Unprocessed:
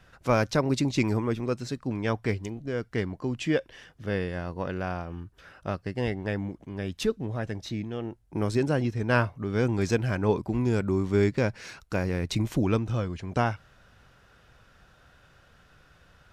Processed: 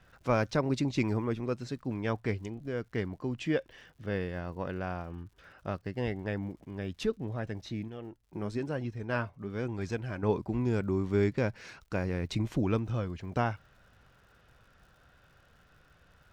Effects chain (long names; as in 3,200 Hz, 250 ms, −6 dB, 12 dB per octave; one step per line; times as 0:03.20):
high-shelf EQ 7,000 Hz −10.5 dB
surface crackle 140 per second −52 dBFS
0:07.88–0:10.23: flanger 1 Hz, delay 0.6 ms, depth 5.1 ms, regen +68%
level −4 dB